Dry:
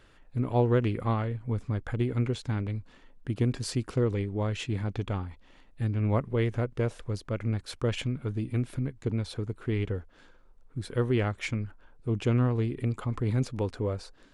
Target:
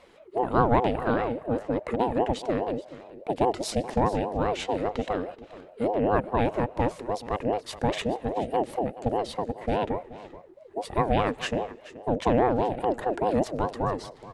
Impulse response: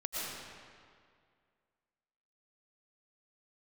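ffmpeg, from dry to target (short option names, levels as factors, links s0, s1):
-filter_complex "[0:a]aecho=1:1:429:0.141,asplit=2[s0][s1];[1:a]atrim=start_sample=2205,asetrate=57330,aresample=44100[s2];[s1][s2]afir=irnorm=-1:irlink=0,volume=0.0596[s3];[s0][s3]amix=inputs=2:normalize=0,aeval=exprs='val(0)*sin(2*PI*490*n/s+490*0.3/4.9*sin(2*PI*4.9*n/s))':c=same,volume=1.78"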